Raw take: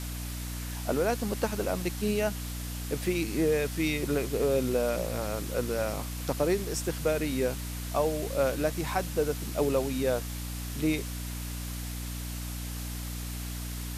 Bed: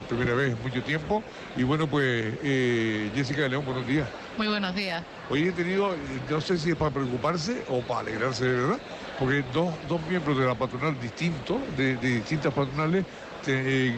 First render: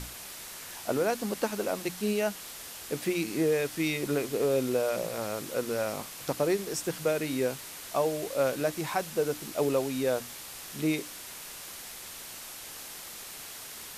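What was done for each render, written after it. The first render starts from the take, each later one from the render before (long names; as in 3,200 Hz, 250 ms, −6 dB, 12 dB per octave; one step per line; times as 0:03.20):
mains-hum notches 60/120/180/240/300 Hz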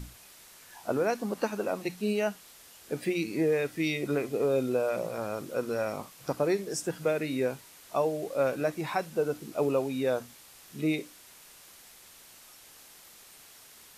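noise reduction from a noise print 10 dB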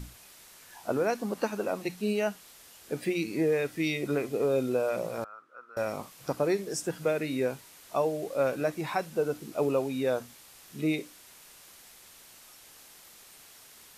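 0:05.24–0:05.77: resonant band-pass 1,300 Hz, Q 8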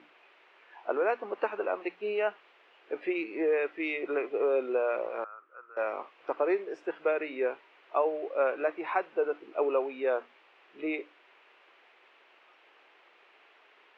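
Chebyshev band-pass filter 360–2,700 Hz, order 3
dynamic equaliser 1,200 Hz, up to +4 dB, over −42 dBFS, Q 1.3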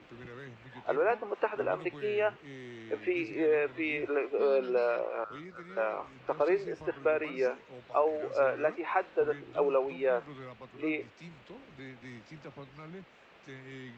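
mix in bed −21.5 dB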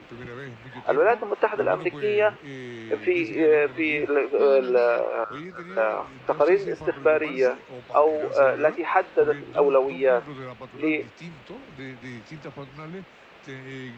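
level +8.5 dB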